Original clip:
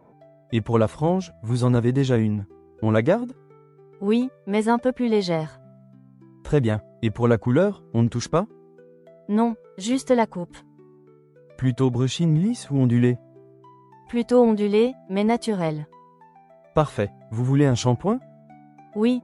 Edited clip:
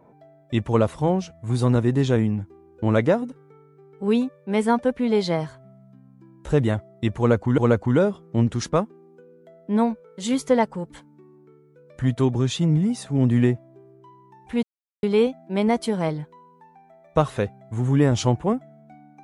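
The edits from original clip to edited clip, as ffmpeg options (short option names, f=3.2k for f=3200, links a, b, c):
-filter_complex "[0:a]asplit=4[a][b][c][d];[a]atrim=end=7.582[e];[b]atrim=start=7.178:end=14.23,asetpts=PTS-STARTPTS,afade=t=out:st=7.048:d=0.004:c=hsin[f];[c]atrim=start=14.23:end=14.63,asetpts=PTS-STARTPTS,volume=0[g];[d]atrim=start=14.63,asetpts=PTS-STARTPTS,afade=t=in:d=0.004:c=hsin[h];[f][g][h]concat=n=3:v=0:a=1[i];[e][i]acrossfade=d=0.004:c1=hsin:c2=hsin"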